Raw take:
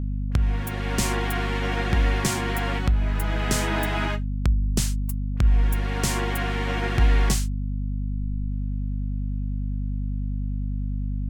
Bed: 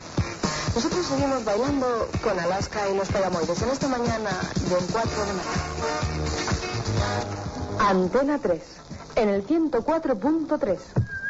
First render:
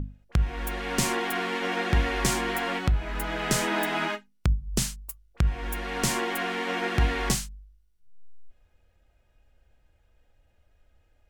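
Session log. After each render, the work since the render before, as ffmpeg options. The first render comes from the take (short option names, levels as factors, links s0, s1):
-af "bandreject=f=50:t=h:w=6,bandreject=f=100:t=h:w=6,bandreject=f=150:t=h:w=6,bandreject=f=200:t=h:w=6,bandreject=f=250:t=h:w=6"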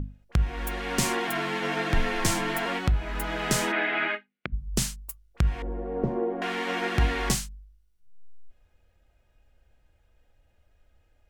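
-filter_complex "[0:a]asettb=1/sr,asplit=3[s0][s1][s2];[s0]atrim=end=1.274[s3];[s1]atrim=start=1.27:end=2.66,asetpts=PTS-STARTPTS,afade=t=in:d=0.004:c=qsin,afade=t=out:st=1.386:d=0.004:c=qsin,afreqshift=-34[s4];[s2]atrim=start=2.656[s5];[s3][s4]acrossfade=d=0.004:c1=hsin:c2=qsin[s6];[s6][s5]acrossfade=d=0.004:c1=qsin:c2=hsin,asplit=3[s7][s8][s9];[s7]afade=t=out:st=3.71:d=0.02[s10];[s8]highpass=290,equalizer=f=950:t=q:w=4:g=-8,equalizer=f=1600:t=q:w=4:g=4,equalizer=f=2200:t=q:w=4:g=7,lowpass=f=3300:w=0.5412,lowpass=f=3300:w=1.3066,afade=t=in:st=3.71:d=0.02,afade=t=out:st=4.52:d=0.02[s11];[s9]afade=t=in:st=4.52:d=0.02[s12];[s10][s11][s12]amix=inputs=3:normalize=0,asettb=1/sr,asplit=3[s13][s14][s15];[s13]atrim=end=5.624[s16];[s14]atrim=start=5.62:end=6.42,asetpts=PTS-STARTPTS,afade=t=in:d=0.004:c=qsin,afade=t=out:st=0.796:d=0.004:c=qsin,lowpass=f=520:t=q:w=1.9[s17];[s15]atrim=start=6.416[s18];[s16][s17]acrossfade=d=0.004:c1=hsin:c2=qsin[s19];[s19][s18]acrossfade=d=0.004:c1=qsin:c2=hsin"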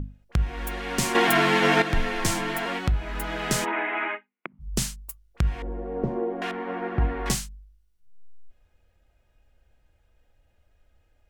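-filter_complex "[0:a]asplit=3[s0][s1][s2];[s0]afade=t=out:st=3.64:d=0.02[s3];[s1]highpass=f=230:w=0.5412,highpass=f=230:w=1.3066,equalizer=f=230:t=q:w=4:g=-3,equalizer=f=540:t=q:w=4:g=-4,equalizer=f=970:t=q:w=4:g=8,equalizer=f=1600:t=q:w=4:g=-4,lowpass=f=2600:w=0.5412,lowpass=f=2600:w=1.3066,afade=t=in:st=3.64:d=0.02,afade=t=out:st=4.59:d=0.02[s4];[s2]afade=t=in:st=4.59:d=0.02[s5];[s3][s4][s5]amix=inputs=3:normalize=0,asettb=1/sr,asplit=3[s6][s7][s8];[s6]atrim=end=6.514[s9];[s7]atrim=start=6.51:end=7.26,asetpts=PTS-STARTPTS,afade=t=in:d=0.004:c=qsin,afade=t=out:st=0.746:d=0.004:c=qsin,lowpass=1200[s10];[s8]atrim=start=7.256[s11];[s9][s10]acrossfade=d=0.004:c1=hsin:c2=qsin[s12];[s12][s11]acrossfade=d=0.004:c1=qsin:c2=hsin,asplit=3[s13][s14][s15];[s13]atrim=end=1.152[s16];[s14]atrim=start=1.148:end=1.822,asetpts=PTS-STARTPTS,volume=2.82[s17];[s15]atrim=start=1.818[s18];[s16][s17]acrossfade=d=0.004:c1=hsin:c2=hsin[s19];[s19][s18]acrossfade=d=0.004:c1=hsin:c2=hsin"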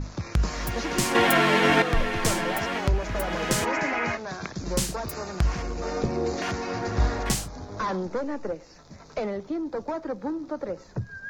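-filter_complex "[1:a]volume=0.398[s0];[0:a][s0]amix=inputs=2:normalize=0"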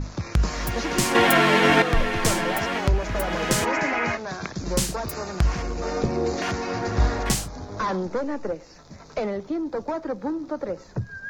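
-af "volume=1.33"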